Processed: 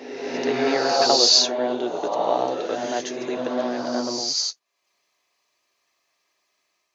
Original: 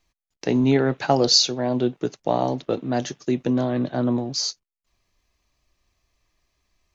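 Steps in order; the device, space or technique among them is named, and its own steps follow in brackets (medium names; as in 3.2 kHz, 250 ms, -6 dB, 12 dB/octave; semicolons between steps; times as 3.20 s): ghost voice (reverse; reverberation RT60 1.6 s, pre-delay 61 ms, DRR -1 dB; reverse; high-pass 450 Hz 12 dB/octave)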